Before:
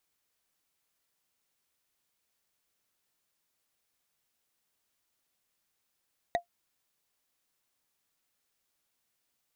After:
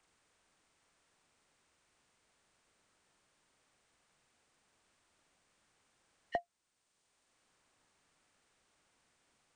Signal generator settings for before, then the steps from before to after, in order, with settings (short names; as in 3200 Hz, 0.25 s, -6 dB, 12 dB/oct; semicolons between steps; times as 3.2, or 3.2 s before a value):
wood hit, lowest mode 695 Hz, decay 0.11 s, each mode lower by 5.5 dB, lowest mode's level -20 dB
nonlinear frequency compression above 1800 Hz 1.5:1; three-band squash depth 40%